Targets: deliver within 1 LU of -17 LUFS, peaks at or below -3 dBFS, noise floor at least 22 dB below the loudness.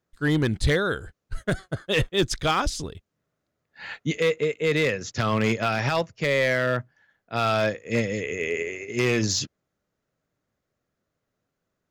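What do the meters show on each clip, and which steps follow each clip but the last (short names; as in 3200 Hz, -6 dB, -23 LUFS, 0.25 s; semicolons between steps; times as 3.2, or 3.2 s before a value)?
clipped 0.9%; flat tops at -15.5 dBFS; loudness -25.0 LUFS; peak -15.5 dBFS; loudness target -17.0 LUFS
-> clip repair -15.5 dBFS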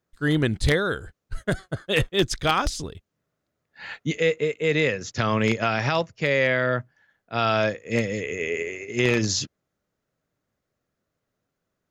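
clipped 0.0%; loudness -24.5 LUFS; peak -6.5 dBFS; loudness target -17.0 LUFS
-> gain +7.5 dB; limiter -3 dBFS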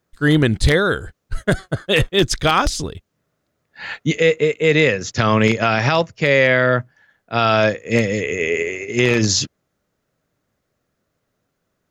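loudness -17.5 LUFS; peak -3.0 dBFS; noise floor -74 dBFS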